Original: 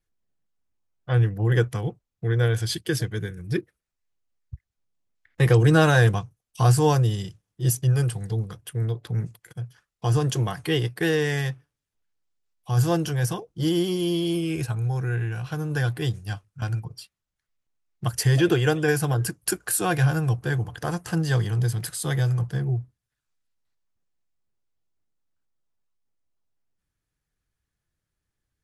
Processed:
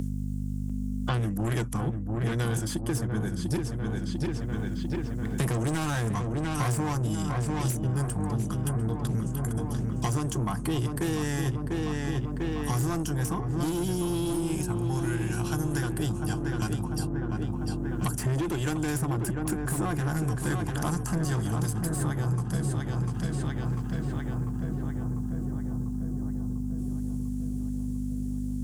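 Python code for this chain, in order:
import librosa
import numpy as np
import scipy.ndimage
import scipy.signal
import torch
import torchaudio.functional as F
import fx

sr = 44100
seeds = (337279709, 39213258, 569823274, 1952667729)

y = fx.graphic_eq(x, sr, hz=(125, 250, 500, 1000, 2000, 4000, 8000), db=(-6, 11, -11, 7, -8, -8, 7))
y = fx.add_hum(y, sr, base_hz=50, snr_db=11)
y = 10.0 ** (-24.0 / 20.0) * np.tanh(y / 10.0 ** (-24.0 / 20.0))
y = fx.echo_filtered(y, sr, ms=696, feedback_pct=68, hz=1600.0, wet_db=-6)
y = fx.band_squash(y, sr, depth_pct=100)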